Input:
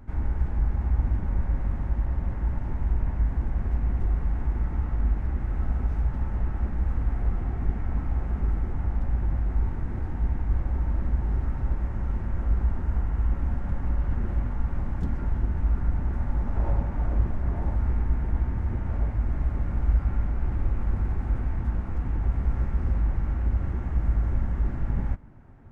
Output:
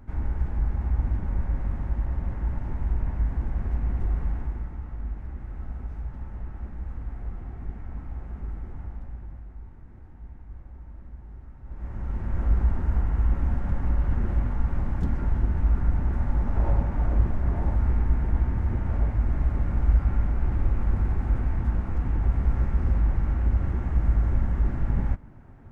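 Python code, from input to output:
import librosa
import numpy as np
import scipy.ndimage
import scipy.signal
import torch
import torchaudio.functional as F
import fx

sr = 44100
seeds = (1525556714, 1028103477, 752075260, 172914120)

y = fx.gain(x, sr, db=fx.line((4.29, -1.0), (4.77, -8.5), (8.79, -8.5), (9.57, -17.0), (11.62, -17.0), (11.87, -5.5), (12.42, 2.0)))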